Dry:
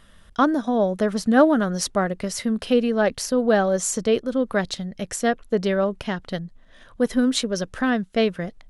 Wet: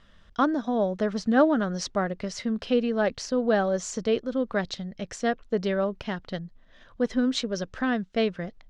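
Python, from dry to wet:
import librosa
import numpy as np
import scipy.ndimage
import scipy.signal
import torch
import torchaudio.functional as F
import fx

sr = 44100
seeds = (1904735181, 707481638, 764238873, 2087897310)

y = scipy.signal.sosfilt(scipy.signal.butter(4, 6300.0, 'lowpass', fs=sr, output='sos'), x)
y = y * librosa.db_to_amplitude(-4.5)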